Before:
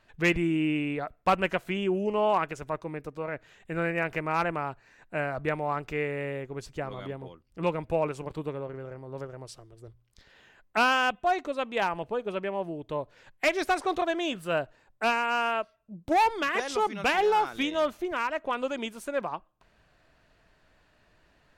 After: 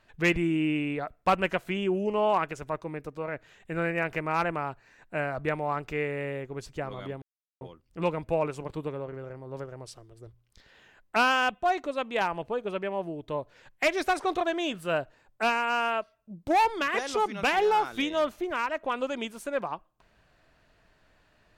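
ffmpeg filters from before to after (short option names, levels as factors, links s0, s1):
-filter_complex "[0:a]asplit=2[s0][s1];[s0]atrim=end=7.22,asetpts=PTS-STARTPTS,afade=t=out:st=7.216:d=0.004:c=hsin,apad=pad_dur=0.39[s2];[s1]atrim=start=7.22,asetpts=PTS-STARTPTS,afade=t=in:d=0.004:c=hsin[s3];[s2][s3]concat=n=2:v=0:a=1"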